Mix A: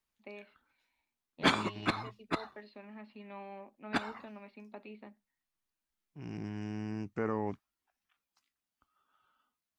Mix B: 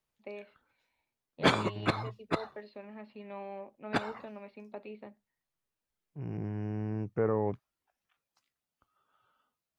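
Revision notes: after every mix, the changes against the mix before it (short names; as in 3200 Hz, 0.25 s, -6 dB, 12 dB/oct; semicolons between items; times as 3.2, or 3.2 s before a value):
second voice: add running mean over 11 samples; master: add graphic EQ 125/250/500 Hz +9/-3/+8 dB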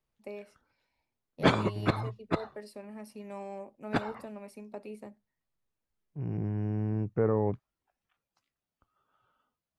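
first voice: remove steep low-pass 4100 Hz 72 dB/oct; master: add tilt -1.5 dB/oct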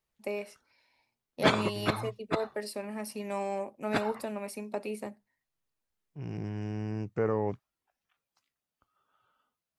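first voice +9.0 dB; second voice: remove running mean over 11 samples; master: add tilt +1.5 dB/oct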